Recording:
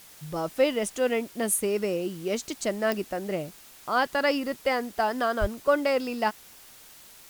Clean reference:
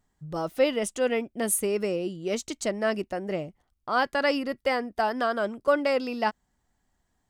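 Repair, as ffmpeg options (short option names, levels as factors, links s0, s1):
-filter_complex "[0:a]adeclick=t=4,asplit=3[s0][s1][s2];[s0]afade=t=out:st=5.4:d=0.02[s3];[s1]highpass=f=140:w=0.5412,highpass=f=140:w=1.3066,afade=t=in:st=5.4:d=0.02,afade=t=out:st=5.52:d=0.02[s4];[s2]afade=t=in:st=5.52:d=0.02[s5];[s3][s4][s5]amix=inputs=3:normalize=0,afwtdn=0.0032"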